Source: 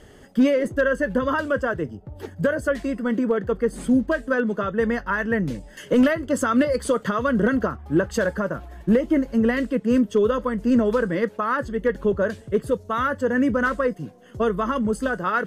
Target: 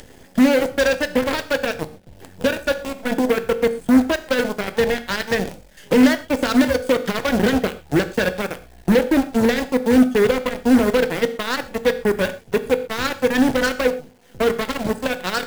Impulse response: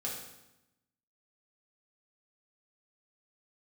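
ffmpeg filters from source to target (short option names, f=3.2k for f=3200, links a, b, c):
-filter_complex "[0:a]aeval=exprs='0.299*(cos(1*acos(clip(val(0)/0.299,-1,1)))-cos(1*PI/2))+0.0668*(cos(7*acos(clip(val(0)/0.299,-1,1)))-cos(7*PI/2))':c=same,acompressor=mode=upward:threshold=-34dB:ratio=2.5,acrusher=bits=6:dc=4:mix=0:aa=0.000001,equalizer=f=1.2k:t=o:w=0.31:g=-8,asplit=2[a][b];[1:a]atrim=start_sample=2205,afade=t=out:st=0.18:d=0.01,atrim=end_sample=8379[c];[b][c]afir=irnorm=-1:irlink=0,volume=-8dB[d];[a][d]amix=inputs=2:normalize=0"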